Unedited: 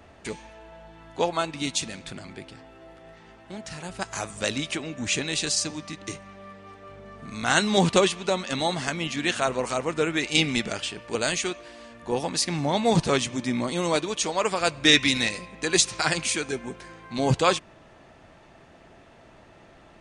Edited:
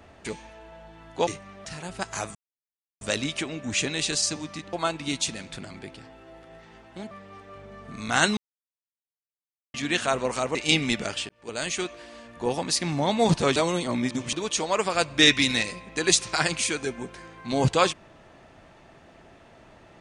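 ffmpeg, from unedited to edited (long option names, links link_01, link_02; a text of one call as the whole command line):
ffmpeg -i in.wav -filter_complex "[0:a]asplit=12[link_01][link_02][link_03][link_04][link_05][link_06][link_07][link_08][link_09][link_10][link_11][link_12];[link_01]atrim=end=1.272[link_13];[link_02]atrim=start=6.068:end=6.452[link_14];[link_03]atrim=start=3.648:end=4.35,asetpts=PTS-STARTPTS,afade=type=out:start_time=0.698:duration=0.004:curve=hsin,apad=pad_dur=0.66[link_15];[link_04]atrim=start=4.35:end=6.072,asetpts=PTS-STARTPTS,afade=type=in:duration=0.004:curve=hsin[link_16];[link_05]atrim=start=1.268:end=3.652[link_17];[link_06]atrim=start=6.448:end=7.71,asetpts=PTS-STARTPTS,afade=type=out:start_time=1.258:duration=0.004:curve=hsin[link_18];[link_07]atrim=start=7.71:end=9.08,asetpts=PTS-STARTPTS,volume=0[link_19];[link_08]atrim=start=9.08:end=9.892,asetpts=PTS-STARTPTS,afade=type=in:duration=0.004:curve=hsin[link_20];[link_09]atrim=start=10.208:end=10.95,asetpts=PTS-STARTPTS,afade=type=out:start_time=0.738:duration=0.004:curve=hsin[link_21];[link_10]atrim=start=10.95:end=13.222,asetpts=PTS-STARTPTS,afade=type=in:duration=0.56[link_22];[link_11]atrim=start=13.218:end=13.992,asetpts=PTS-STARTPTS,areverse[link_23];[link_12]atrim=start=13.988[link_24];[link_13][link_14]acrossfade=duration=0.004:curve1=hsin:curve2=hsin[link_25];[link_15][link_16]concat=n=2:v=0:a=1[link_26];[link_25][link_26]acrossfade=duration=0.004:curve1=hsin:curve2=hsin[link_27];[link_27][link_17]acrossfade=duration=0.004:curve1=hsin:curve2=hsin[link_28];[link_18][link_19][link_20]concat=n=3:v=0:a=1[link_29];[link_28][link_29]acrossfade=duration=0.004:curve1=hsin:curve2=hsin[link_30];[link_21][link_22]concat=n=2:v=0:a=1[link_31];[link_30][link_31]acrossfade=duration=0.004:curve1=hsin:curve2=hsin[link_32];[link_32][link_23]acrossfade=duration=0.004:curve1=hsin:curve2=hsin[link_33];[link_33][link_24]acrossfade=duration=0.004:curve1=hsin:curve2=hsin" out.wav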